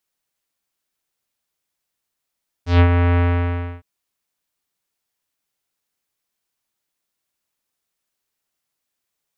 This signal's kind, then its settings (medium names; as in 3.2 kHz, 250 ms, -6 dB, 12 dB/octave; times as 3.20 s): synth note square F2 24 dB/octave, low-pass 2.4 kHz, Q 1.1, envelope 1.5 oct, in 0.17 s, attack 139 ms, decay 0.08 s, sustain -5.5 dB, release 0.64 s, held 0.52 s